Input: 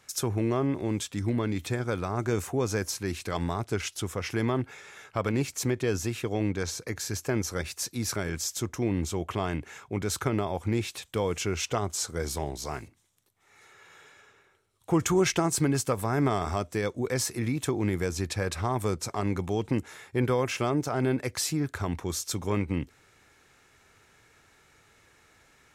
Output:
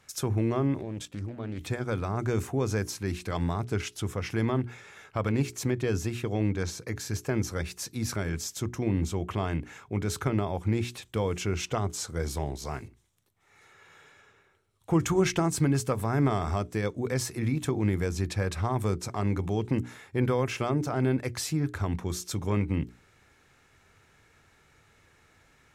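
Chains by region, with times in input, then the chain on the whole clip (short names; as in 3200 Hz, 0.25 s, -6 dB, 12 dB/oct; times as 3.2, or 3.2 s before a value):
0.81–1.61 bell 580 Hz +7 dB 0.53 oct + level quantiser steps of 12 dB + Doppler distortion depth 0.31 ms
whole clip: tone controls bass +5 dB, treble -3 dB; notches 60/120/180/240/300/360/420 Hz; gain -1.5 dB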